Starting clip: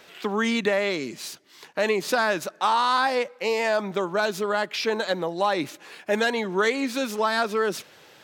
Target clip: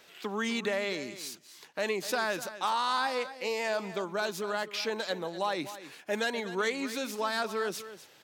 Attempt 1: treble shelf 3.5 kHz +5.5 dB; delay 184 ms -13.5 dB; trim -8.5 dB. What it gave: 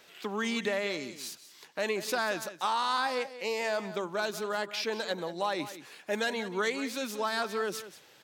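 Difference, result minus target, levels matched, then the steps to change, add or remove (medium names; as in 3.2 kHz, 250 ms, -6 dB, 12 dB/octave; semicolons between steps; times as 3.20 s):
echo 66 ms early
change: delay 250 ms -13.5 dB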